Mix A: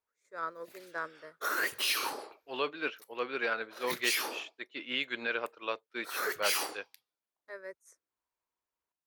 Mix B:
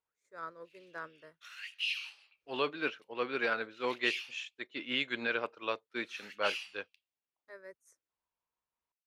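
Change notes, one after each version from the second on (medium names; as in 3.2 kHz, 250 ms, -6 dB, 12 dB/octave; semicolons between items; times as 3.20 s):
first voice -6.0 dB; background: add ladder band-pass 2.9 kHz, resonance 75%; master: add tone controls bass +7 dB, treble +1 dB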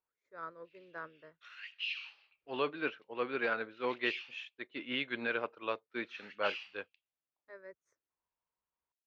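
master: add distance through air 220 m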